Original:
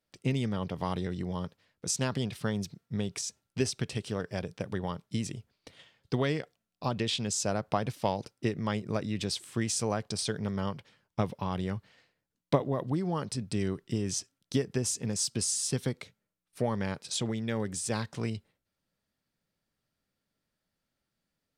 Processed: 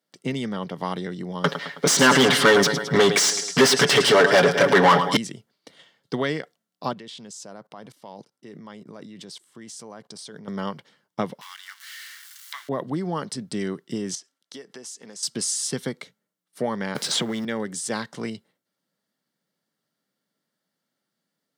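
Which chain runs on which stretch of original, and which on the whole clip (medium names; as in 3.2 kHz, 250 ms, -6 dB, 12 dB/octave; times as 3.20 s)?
1.44–5.17 s: comb 7.1 ms, depth 83% + feedback delay 107 ms, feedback 52%, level -17.5 dB + overdrive pedal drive 34 dB, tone 3.2 kHz, clips at -11 dBFS
6.93–10.48 s: peaking EQ 1 kHz +3.5 dB 0.36 oct + level held to a coarse grid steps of 22 dB
11.41–12.69 s: jump at every zero crossing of -38 dBFS + inverse Chebyshev high-pass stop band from 560 Hz, stop band 50 dB
14.15–15.23 s: frequency weighting A + compression 2:1, threshold -47 dBFS
16.95–17.45 s: companding laws mixed up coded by mu + three bands compressed up and down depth 100%
whole clip: high-pass 160 Hz 24 dB/octave; dynamic bell 1.9 kHz, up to +4 dB, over -45 dBFS, Q 0.8; band-stop 2.5 kHz, Q 6.5; trim +4 dB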